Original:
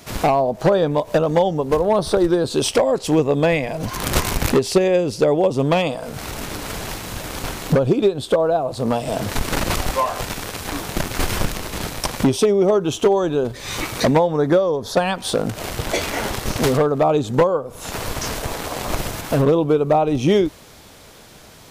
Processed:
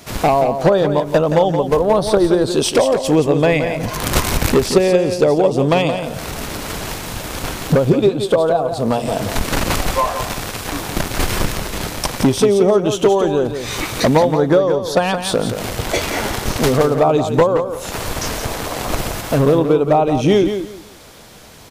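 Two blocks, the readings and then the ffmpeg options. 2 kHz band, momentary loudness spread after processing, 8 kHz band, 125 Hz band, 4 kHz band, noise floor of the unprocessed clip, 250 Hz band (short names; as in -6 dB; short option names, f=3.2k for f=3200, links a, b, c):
+3.0 dB, 10 LU, +3.0 dB, +3.0 dB, +3.0 dB, -44 dBFS, +3.0 dB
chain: -af "aecho=1:1:173|346|519:0.376|0.0864|0.0199,volume=2.5dB"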